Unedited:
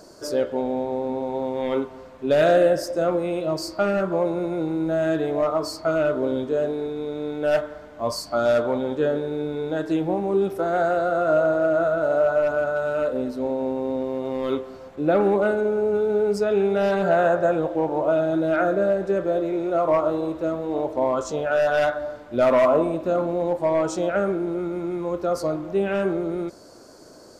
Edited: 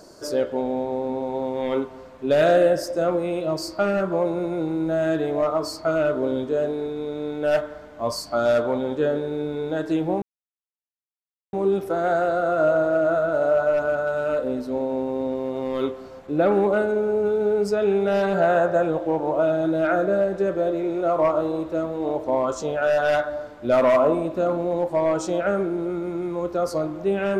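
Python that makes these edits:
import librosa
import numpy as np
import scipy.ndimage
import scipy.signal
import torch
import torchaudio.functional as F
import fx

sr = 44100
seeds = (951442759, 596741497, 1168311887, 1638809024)

y = fx.edit(x, sr, fx.insert_silence(at_s=10.22, length_s=1.31), tone=tone)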